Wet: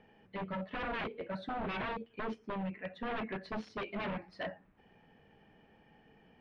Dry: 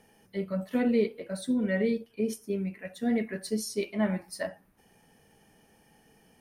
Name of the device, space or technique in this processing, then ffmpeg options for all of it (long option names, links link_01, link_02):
synthesiser wavefolder: -af "aeval=exprs='0.0282*(abs(mod(val(0)/0.0282+3,4)-2)-1)':channel_layout=same,lowpass=frequency=3200:width=0.5412,lowpass=frequency=3200:width=1.3066,volume=-1dB"